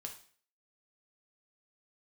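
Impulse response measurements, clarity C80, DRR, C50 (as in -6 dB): 14.0 dB, 2.0 dB, 8.5 dB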